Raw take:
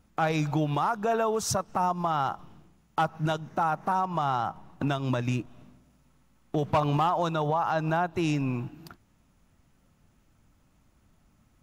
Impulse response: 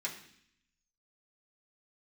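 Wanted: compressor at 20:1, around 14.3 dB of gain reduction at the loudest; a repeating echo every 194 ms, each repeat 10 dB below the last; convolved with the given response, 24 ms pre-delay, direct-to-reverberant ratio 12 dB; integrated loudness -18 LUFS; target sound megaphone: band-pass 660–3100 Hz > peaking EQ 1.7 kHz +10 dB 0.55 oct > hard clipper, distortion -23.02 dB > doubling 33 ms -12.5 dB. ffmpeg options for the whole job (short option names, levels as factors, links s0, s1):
-filter_complex "[0:a]acompressor=threshold=0.0178:ratio=20,aecho=1:1:194|388|582|776:0.316|0.101|0.0324|0.0104,asplit=2[s0][s1];[1:a]atrim=start_sample=2205,adelay=24[s2];[s1][s2]afir=irnorm=-1:irlink=0,volume=0.2[s3];[s0][s3]amix=inputs=2:normalize=0,highpass=660,lowpass=3100,equalizer=f=1700:t=o:w=0.55:g=10,asoftclip=type=hard:threshold=0.0376,asplit=2[s4][s5];[s5]adelay=33,volume=0.237[s6];[s4][s6]amix=inputs=2:normalize=0,volume=15"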